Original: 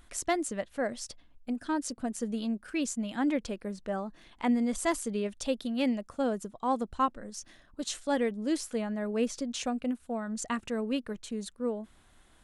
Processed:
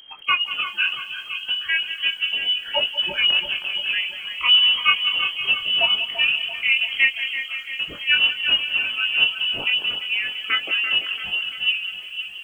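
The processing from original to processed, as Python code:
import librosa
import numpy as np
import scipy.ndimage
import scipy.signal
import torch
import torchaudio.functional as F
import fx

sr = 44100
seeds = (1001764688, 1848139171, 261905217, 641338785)

y = fx.spec_quant(x, sr, step_db=30)
y = fx.hum_notches(y, sr, base_hz=50, count=8)
y = fx.doubler(y, sr, ms=21.0, db=-3.5)
y = fx.echo_split(y, sr, split_hz=830.0, low_ms=508, high_ms=339, feedback_pct=52, wet_db=-9.5)
y = fx.freq_invert(y, sr, carrier_hz=3200)
y = fx.low_shelf(y, sr, hz=150.0, db=-6.5)
y = fx.echo_crushed(y, sr, ms=190, feedback_pct=55, bits=9, wet_db=-14.5)
y = y * librosa.db_to_amplitude(8.5)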